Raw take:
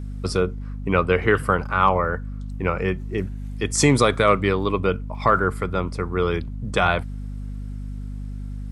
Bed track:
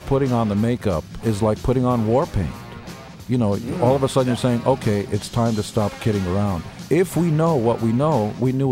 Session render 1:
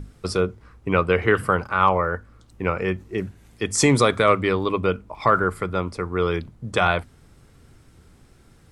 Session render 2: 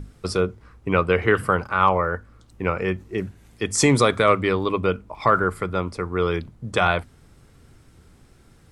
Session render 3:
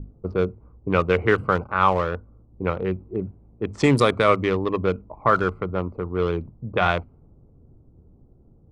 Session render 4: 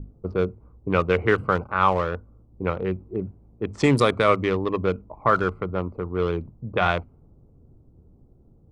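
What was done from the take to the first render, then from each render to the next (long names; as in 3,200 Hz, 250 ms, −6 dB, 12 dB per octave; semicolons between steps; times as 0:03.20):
mains-hum notches 50/100/150/200/250 Hz
no processing that can be heard
adaptive Wiener filter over 25 samples; low-pass that shuts in the quiet parts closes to 620 Hz, open at −13.5 dBFS
level −1 dB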